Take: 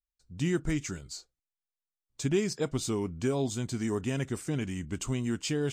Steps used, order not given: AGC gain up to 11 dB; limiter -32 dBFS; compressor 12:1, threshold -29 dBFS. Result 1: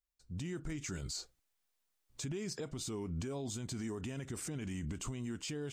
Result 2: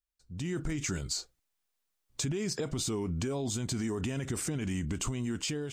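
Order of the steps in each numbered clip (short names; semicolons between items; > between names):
AGC > compressor > limiter; limiter > AGC > compressor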